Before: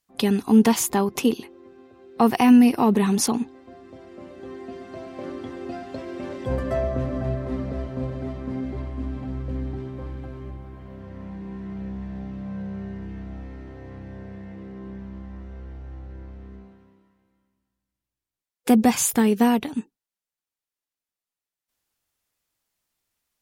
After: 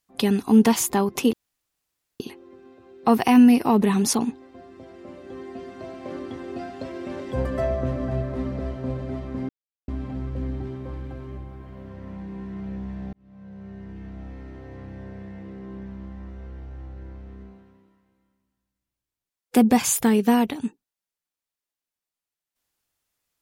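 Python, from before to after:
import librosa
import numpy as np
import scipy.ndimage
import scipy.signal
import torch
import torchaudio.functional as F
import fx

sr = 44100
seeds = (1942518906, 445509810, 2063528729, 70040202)

y = fx.edit(x, sr, fx.insert_room_tone(at_s=1.33, length_s=0.87),
    fx.silence(start_s=8.62, length_s=0.39),
    fx.fade_in_span(start_s=12.26, length_s=1.81, curve='qsin'), tone=tone)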